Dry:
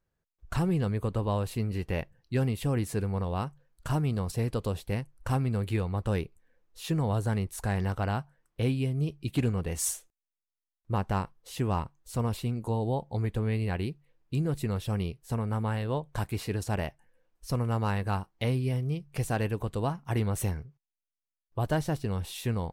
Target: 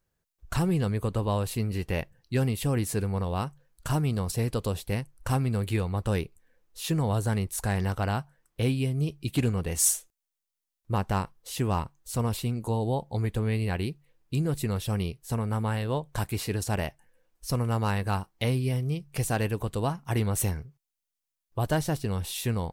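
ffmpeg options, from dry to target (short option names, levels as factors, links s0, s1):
-af "highshelf=f=4000:g=7,volume=1.19"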